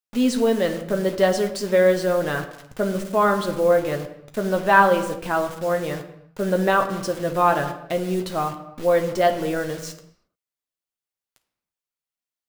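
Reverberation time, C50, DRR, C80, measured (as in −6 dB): non-exponential decay, 10.5 dB, 4.5 dB, 13.0 dB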